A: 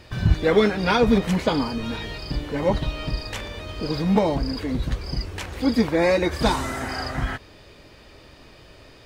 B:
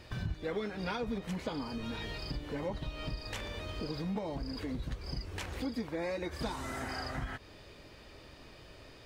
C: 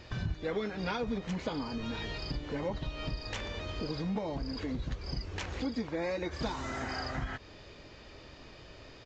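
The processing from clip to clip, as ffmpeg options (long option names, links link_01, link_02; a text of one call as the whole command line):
ffmpeg -i in.wav -af "acompressor=threshold=-30dB:ratio=4,volume=-5.5dB" out.wav
ffmpeg -i in.wav -af "aresample=16000,aresample=44100,volume=2dB" out.wav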